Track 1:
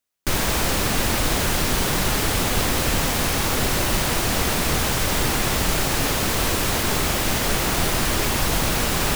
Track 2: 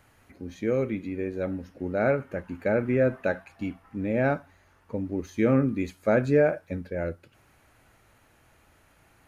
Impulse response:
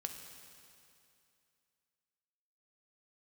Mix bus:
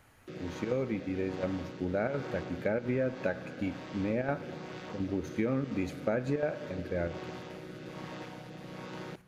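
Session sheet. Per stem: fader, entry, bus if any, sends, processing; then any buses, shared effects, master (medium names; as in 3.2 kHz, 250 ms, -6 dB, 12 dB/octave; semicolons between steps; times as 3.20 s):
-14.5 dB, 0.00 s, send -12.5 dB, vocoder on a held chord major triad, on B2; three-band isolator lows -13 dB, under 220 Hz, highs -22 dB, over 6.2 kHz; rotary cabinet horn 1.2 Hz
-3.5 dB, 0.00 s, send -6.5 dB, square tremolo 2.8 Hz, depth 65%, duty 80%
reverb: on, RT60 2.6 s, pre-delay 3 ms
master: compression 6:1, threshold -27 dBFS, peak gain reduction 9 dB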